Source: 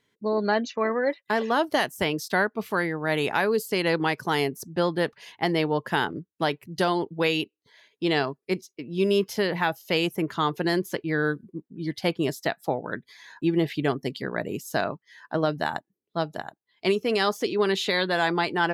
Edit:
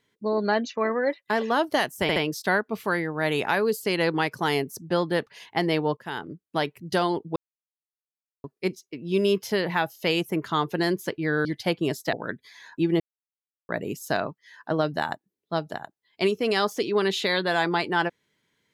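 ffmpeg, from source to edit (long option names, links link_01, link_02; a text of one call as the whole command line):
ffmpeg -i in.wav -filter_complex "[0:a]asplit=10[link_01][link_02][link_03][link_04][link_05][link_06][link_07][link_08][link_09][link_10];[link_01]atrim=end=2.092[link_11];[link_02]atrim=start=2.018:end=2.092[link_12];[link_03]atrim=start=2.018:end=5.83,asetpts=PTS-STARTPTS,afade=type=out:start_time=3.808:duration=0.004:curve=hsin:silence=0.141254[link_13];[link_04]atrim=start=5.83:end=7.22,asetpts=PTS-STARTPTS,afade=type=in:duration=0.88:curve=qsin:silence=0.141254,afade=type=out:start_time=1.386:duration=0.004:curve=hsin[link_14];[link_05]atrim=start=7.22:end=8.3,asetpts=PTS-STARTPTS,volume=0[link_15];[link_06]atrim=start=8.3:end=11.312,asetpts=PTS-STARTPTS,afade=type=in:duration=0.004:curve=hsin[link_16];[link_07]atrim=start=11.828:end=12.512[link_17];[link_08]atrim=start=12.768:end=13.64,asetpts=PTS-STARTPTS,afade=type=out:start_time=0.868:duration=0.004:curve=hsin[link_18];[link_09]atrim=start=13.64:end=14.33,asetpts=PTS-STARTPTS,volume=0[link_19];[link_10]atrim=start=14.33,asetpts=PTS-STARTPTS,afade=type=in:duration=0.004:curve=hsin[link_20];[link_11][link_12]acrossfade=duration=0.004:curve1=hsin:curve2=hsin[link_21];[link_13][link_14][link_15][link_16]concat=n=4:v=0:a=1[link_22];[link_21][link_22]acrossfade=duration=0.004:curve1=hsin:curve2=hsin[link_23];[link_23][link_17]acrossfade=duration=0.004:curve1=hsin:curve2=hsin[link_24];[link_18][link_19][link_20]concat=n=3:v=0:a=1[link_25];[link_24][link_25]acrossfade=duration=0.004:curve1=hsin:curve2=hsin" out.wav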